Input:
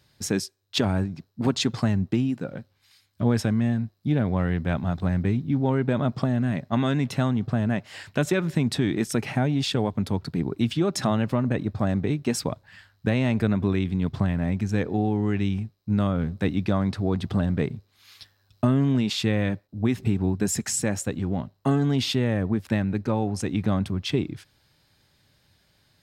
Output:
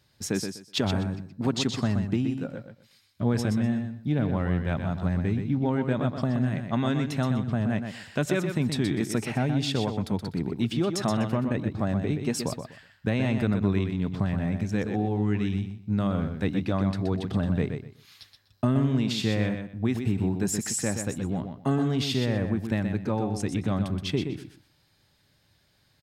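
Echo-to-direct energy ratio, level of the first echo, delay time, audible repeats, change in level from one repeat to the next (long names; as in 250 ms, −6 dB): −7.0 dB, −7.0 dB, 124 ms, 3, −13.5 dB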